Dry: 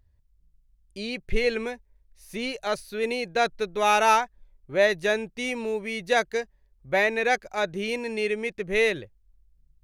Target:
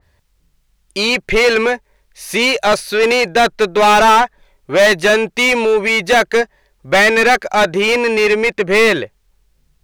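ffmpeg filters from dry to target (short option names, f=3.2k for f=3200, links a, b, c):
-filter_complex "[0:a]asplit=2[a][b];[b]highpass=f=720:p=1,volume=25dB,asoftclip=type=tanh:threshold=-8.5dB[c];[a][c]amix=inputs=2:normalize=0,lowpass=f=6.1k:p=1,volume=-6dB,adynamicequalizer=threshold=0.0316:dfrequency=2500:dqfactor=0.7:tfrequency=2500:tqfactor=0.7:attack=5:release=100:ratio=0.375:range=3:mode=cutabove:tftype=highshelf,volume=5.5dB"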